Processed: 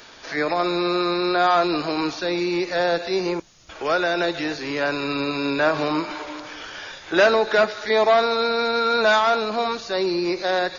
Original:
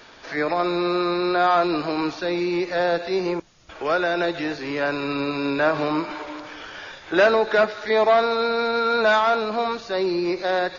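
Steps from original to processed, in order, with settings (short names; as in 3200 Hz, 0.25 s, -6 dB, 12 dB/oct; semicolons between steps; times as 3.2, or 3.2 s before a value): high shelf 4900 Hz +10.5 dB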